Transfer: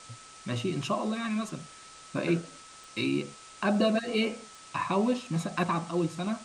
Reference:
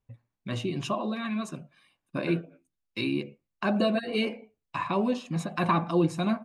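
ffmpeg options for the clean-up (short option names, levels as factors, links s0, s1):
-af "adeclick=t=4,bandreject=f=1300:w=30,afwtdn=0.004,asetnsamples=n=441:p=0,asendcmd='5.63 volume volume 5dB',volume=1"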